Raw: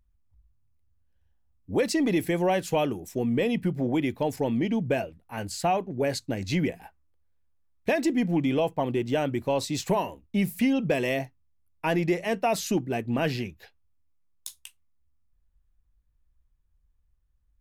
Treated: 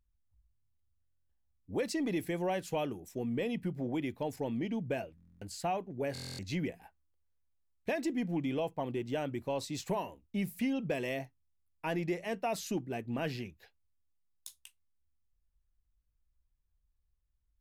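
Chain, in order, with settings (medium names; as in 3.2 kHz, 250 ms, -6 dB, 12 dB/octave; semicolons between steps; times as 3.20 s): buffer glitch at 1.04/5.16/6.13 s, samples 1024, times 10; trim -9 dB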